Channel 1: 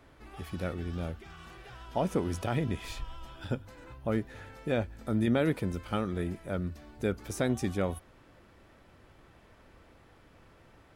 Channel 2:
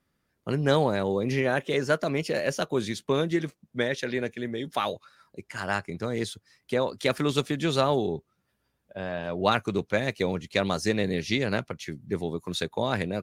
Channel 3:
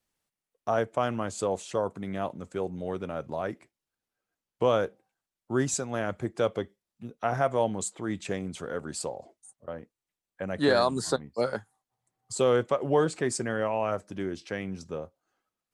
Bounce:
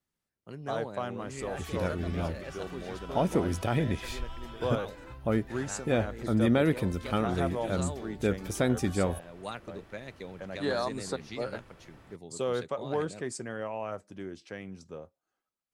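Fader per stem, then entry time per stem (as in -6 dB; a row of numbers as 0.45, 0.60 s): +2.5, -16.0, -7.5 dB; 1.20, 0.00, 0.00 s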